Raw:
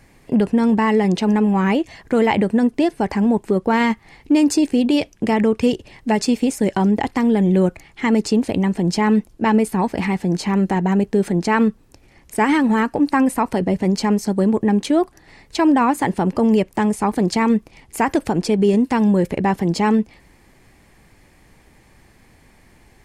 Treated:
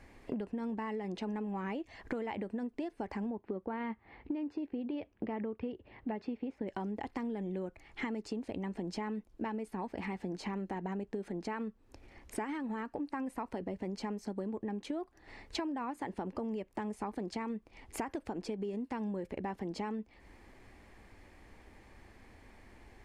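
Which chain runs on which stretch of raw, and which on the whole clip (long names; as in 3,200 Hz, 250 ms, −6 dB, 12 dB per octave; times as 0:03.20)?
0:03.30–0:06.68: high-pass filter 52 Hz + high-frequency loss of the air 360 metres
whole clip: low-pass filter 2,800 Hz 6 dB per octave; parametric band 150 Hz −13.5 dB 0.44 octaves; downward compressor 12 to 1, threshold −31 dBFS; level −4 dB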